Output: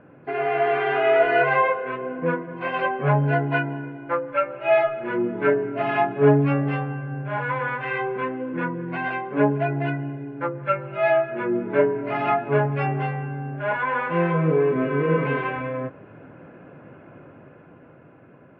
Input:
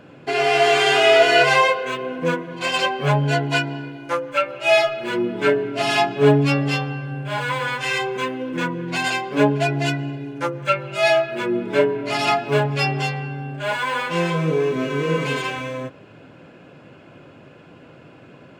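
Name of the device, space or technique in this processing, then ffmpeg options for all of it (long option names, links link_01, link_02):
action camera in a waterproof case: -af "lowpass=frequency=2000:width=0.5412,lowpass=frequency=2000:width=1.3066,dynaudnorm=framelen=160:gausssize=17:maxgain=5.5dB,volume=-4.5dB" -ar 22050 -c:a aac -b:a 64k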